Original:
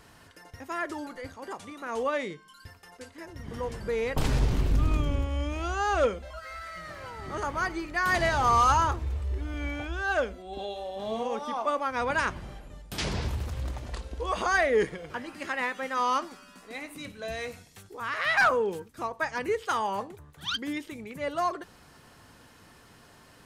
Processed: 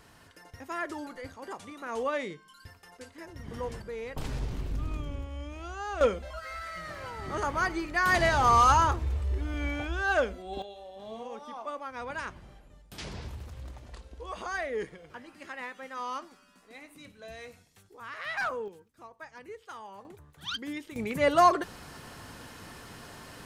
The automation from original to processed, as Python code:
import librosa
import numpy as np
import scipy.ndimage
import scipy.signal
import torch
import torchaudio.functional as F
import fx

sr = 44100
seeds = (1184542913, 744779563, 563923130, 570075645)

y = fx.gain(x, sr, db=fx.steps((0.0, -2.0), (3.82, -9.0), (6.01, 1.0), (10.62, -9.5), (18.68, -16.0), (20.05, -4.0), (20.96, 8.0)))